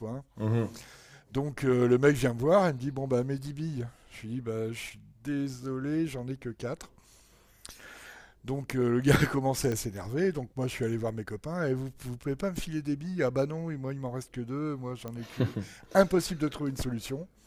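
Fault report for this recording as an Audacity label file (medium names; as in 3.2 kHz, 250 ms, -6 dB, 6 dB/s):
9.720000	9.720000	pop -20 dBFS
15.080000	15.080000	pop -24 dBFS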